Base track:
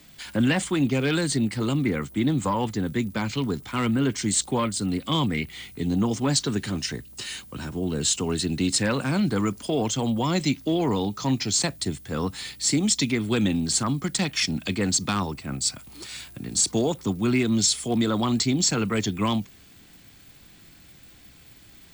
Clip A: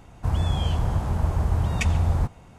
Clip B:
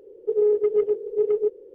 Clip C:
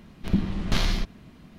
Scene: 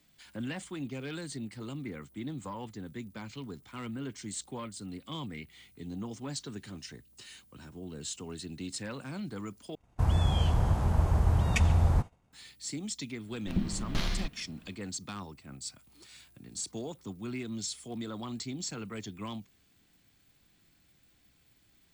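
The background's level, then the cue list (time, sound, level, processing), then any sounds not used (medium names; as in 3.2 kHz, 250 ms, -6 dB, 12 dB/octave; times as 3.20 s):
base track -15.5 dB
9.75 s: replace with A -2.5 dB + expander -37 dBFS
13.23 s: add C -7.5 dB, fades 0.10 s
not used: B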